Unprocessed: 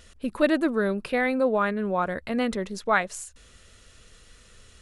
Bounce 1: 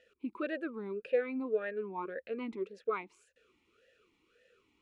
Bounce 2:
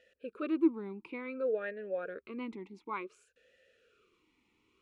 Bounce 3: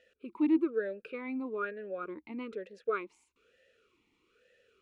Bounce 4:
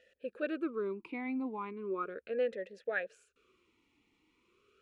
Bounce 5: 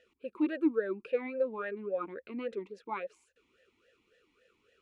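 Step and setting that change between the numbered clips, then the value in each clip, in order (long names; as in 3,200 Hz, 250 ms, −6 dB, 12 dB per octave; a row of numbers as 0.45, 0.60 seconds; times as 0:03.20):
formant filter swept between two vowels, speed: 1.8, 0.56, 1.1, 0.37, 3.6 Hertz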